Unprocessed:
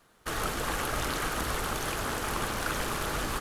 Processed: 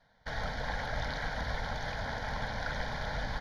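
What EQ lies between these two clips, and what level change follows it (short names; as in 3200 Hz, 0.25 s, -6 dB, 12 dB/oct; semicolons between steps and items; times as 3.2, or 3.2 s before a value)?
air absorption 130 m; fixed phaser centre 1800 Hz, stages 8; 0.0 dB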